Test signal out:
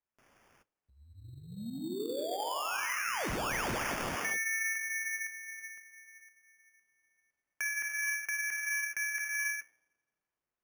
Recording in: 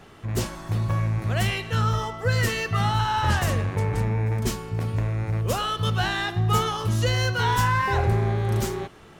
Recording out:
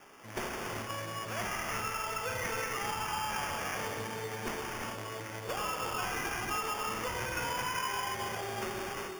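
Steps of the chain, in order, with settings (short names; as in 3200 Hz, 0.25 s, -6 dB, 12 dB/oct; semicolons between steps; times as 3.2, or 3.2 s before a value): tilt shelf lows -3.5 dB, about 680 Hz; non-linear reverb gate 0.45 s flat, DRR -1 dB; in parallel at -5 dB: soft clip -19.5 dBFS; on the sum: dynamic EQ 6600 Hz, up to +4 dB, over -37 dBFS, Q 1.2; HPF 280 Hz 12 dB/oct; on a send: dark delay 85 ms, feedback 65%, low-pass 480 Hz, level -7.5 dB; on the sum: flange 0.47 Hz, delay 7.4 ms, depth 4 ms, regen -78%; compressor 4:1, threshold -26 dBFS; sample-and-hold 11×; gain -6.5 dB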